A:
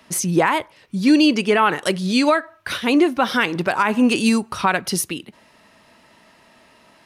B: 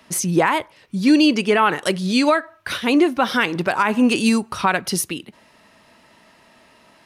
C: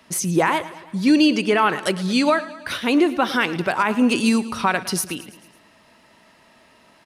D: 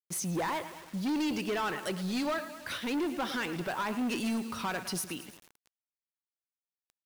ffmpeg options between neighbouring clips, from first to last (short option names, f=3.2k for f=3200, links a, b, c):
-af anull
-af "aecho=1:1:110|220|330|440|550:0.15|0.0853|0.0486|0.0277|0.0158,volume=-1.5dB"
-af "asoftclip=type=tanh:threshold=-19.5dB,acrusher=bits=6:mix=0:aa=0.000001,volume=-8.5dB"